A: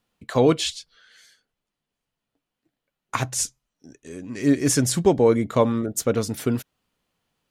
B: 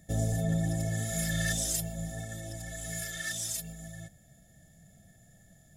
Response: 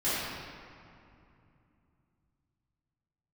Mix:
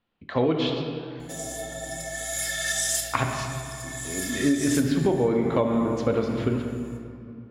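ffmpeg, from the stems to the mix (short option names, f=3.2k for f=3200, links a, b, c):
-filter_complex "[0:a]lowpass=f=3.8k:w=0.5412,lowpass=f=3.8k:w=1.3066,dynaudnorm=f=230:g=11:m=5dB,volume=-4dB,asplit=2[a][b];[b]volume=-12.5dB[c];[1:a]highpass=790,aeval=exprs='val(0)+0.00178*(sin(2*PI*60*n/s)+sin(2*PI*2*60*n/s)/2+sin(2*PI*3*60*n/s)/3+sin(2*PI*4*60*n/s)/4+sin(2*PI*5*60*n/s)/5)':c=same,adelay=1200,volume=3dB,asplit=2[d][e];[e]volume=-8dB[f];[2:a]atrim=start_sample=2205[g];[c][f]amix=inputs=2:normalize=0[h];[h][g]afir=irnorm=-1:irlink=0[i];[a][d][i]amix=inputs=3:normalize=0,equalizer=f=13k:w=6.2:g=-11.5,acompressor=threshold=-18dB:ratio=12"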